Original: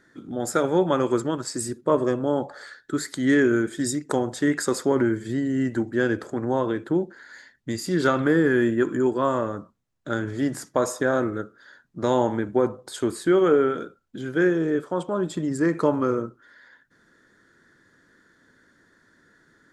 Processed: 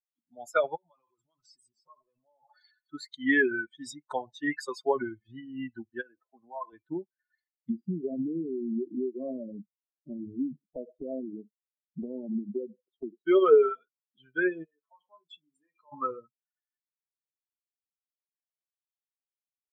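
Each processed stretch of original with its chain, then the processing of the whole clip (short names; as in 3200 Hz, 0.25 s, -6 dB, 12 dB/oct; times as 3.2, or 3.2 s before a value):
0.75–2.91 transient shaper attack +2 dB, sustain +9 dB + thin delay 0.288 s, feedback 43%, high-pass 2400 Hz, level -10 dB + compressor, threshold -34 dBFS
6.01–6.73 HPF 170 Hz + compressor 4:1, threshold -24 dBFS + air absorption 360 m
7.69–13.26 EQ curve 100 Hz 0 dB, 190 Hz +14 dB, 400 Hz +11 dB, 790 Hz -7 dB, 1200 Hz -22 dB, 2300 Hz -18 dB, 3900 Hz -16 dB, 6900 Hz -27 dB, 9900 Hz -15 dB + compressor 12:1, threshold -17 dBFS
14.64–15.92 low shelf 180 Hz -10 dB + compressor, threshold -34 dBFS + doubler 34 ms -8 dB
whole clip: per-bin expansion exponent 3; three-band isolator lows -13 dB, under 360 Hz, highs -20 dB, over 4000 Hz; comb 4.7 ms, depth 45%; gain +4 dB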